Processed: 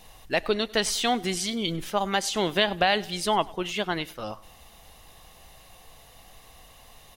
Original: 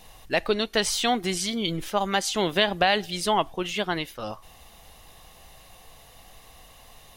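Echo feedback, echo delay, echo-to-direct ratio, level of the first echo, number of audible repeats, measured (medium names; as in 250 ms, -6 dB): 51%, 99 ms, -22.0 dB, -23.0 dB, 3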